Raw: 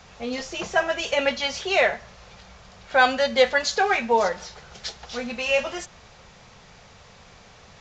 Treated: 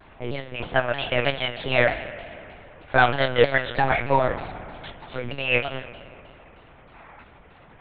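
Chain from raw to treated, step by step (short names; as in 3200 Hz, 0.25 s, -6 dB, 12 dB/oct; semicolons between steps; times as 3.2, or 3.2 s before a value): spring tank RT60 2.8 s, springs 57 ms, chirp 55 ms, DRR 11 dB; spectral gain 6.95–7.23, 650–2600 Hz +7 dB; low-pass opened by the level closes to 2000 Hz, open at -19 dBFS; monotone LPC vocoder at 8 kHz 130 Hz; shaped vibrato saw down 3.2 Hz, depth 160 cents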